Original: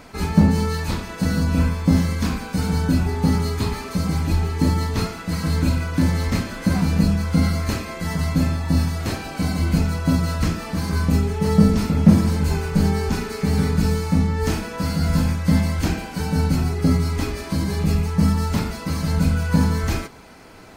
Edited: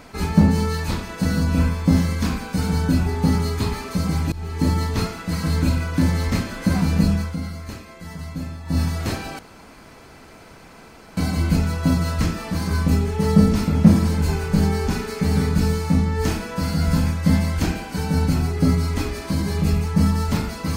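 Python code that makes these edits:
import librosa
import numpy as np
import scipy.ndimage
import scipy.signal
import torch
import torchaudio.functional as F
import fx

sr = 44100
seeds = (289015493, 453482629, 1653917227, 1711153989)

y = fx.edit(x, sr, fx.fade_in_from(start_s=4.32, length_s=0.49, curve='qsin', floor_db=-21.5),
    fx.fade_down_up(start_s=7.12, length_s=1.77, db=-10.5, fade_s=0.24, curve='qsin'),
    fx.insert_room_tone(at_s=9.39, length_s=1.78), tone=tone)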